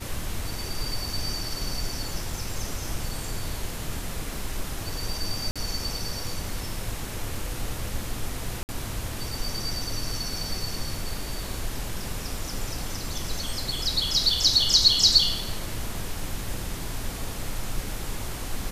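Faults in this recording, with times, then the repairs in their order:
5.51–5.56 gap 46 ms
8.63–8.69 gap 59 ms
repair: interpolate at 5.51, 46 ms; interpolate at 8.63, 59 ms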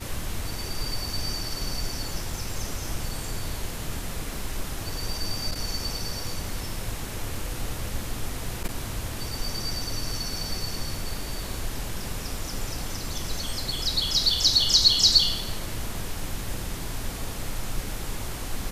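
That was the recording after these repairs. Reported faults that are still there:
none

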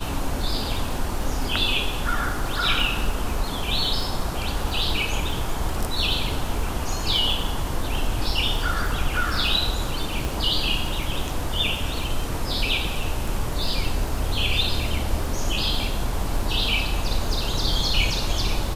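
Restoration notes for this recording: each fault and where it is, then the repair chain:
crackle 35/s -29 dBFS
10.25 pop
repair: de-click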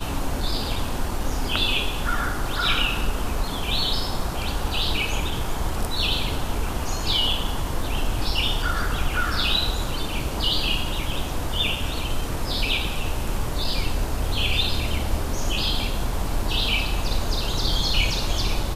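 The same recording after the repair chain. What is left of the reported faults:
10.25 pop

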